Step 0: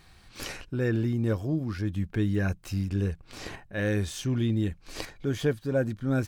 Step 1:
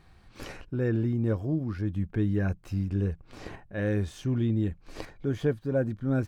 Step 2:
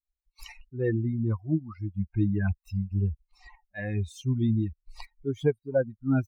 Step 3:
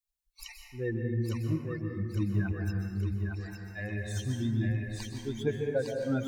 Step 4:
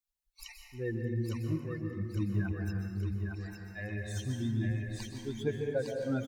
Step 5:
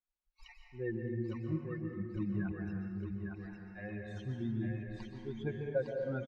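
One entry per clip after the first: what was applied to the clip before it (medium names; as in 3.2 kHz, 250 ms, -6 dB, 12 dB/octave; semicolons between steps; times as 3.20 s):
treble shelf 2.2 kHz -12 dB
expander on every frequency bin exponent 3; trim +6 dB
treble shelf 2.5 kHz +11.5 dB; on a send: thinning echo 857 ms, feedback 51%, high-pass 380 Hz, level -3.5 dB; on the sum: plate-style reverb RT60 1.7 s, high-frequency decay 0.4×, pre-delay 115 ms, DRR 2.5 dB; trim -6.5 dB
feedback delay 306 ms, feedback 45%, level -18 dB; trim -2.5 dB
low-pass 2.3 kHz 12 dB/octave; comb 5.5 ms, depth 53%; trim -3.5 dB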